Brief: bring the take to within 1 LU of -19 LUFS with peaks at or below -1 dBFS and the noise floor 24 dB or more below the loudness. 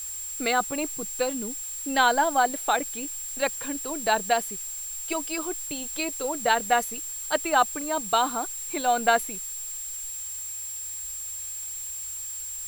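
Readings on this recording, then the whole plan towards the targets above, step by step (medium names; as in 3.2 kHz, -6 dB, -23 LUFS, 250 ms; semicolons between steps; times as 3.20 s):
steady tone 7.5 kHz; tone level -33 dBFS; noise floor -35 dBFS; noise floor target -51 dBFS; loudness -27.0 LUFS; peak level -6.5 dBFS; loudness target -19.0 LUFS
-> band-stop 7.5 kHz, Q 30; noise print and reduce 16 dB; trim +8 dB; peak limiter -1 dBFS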